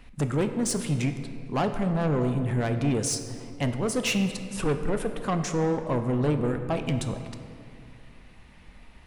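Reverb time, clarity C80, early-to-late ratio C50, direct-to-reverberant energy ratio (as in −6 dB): 2.6 s, 9.5 dB, 8.5 dB, 7.0 dB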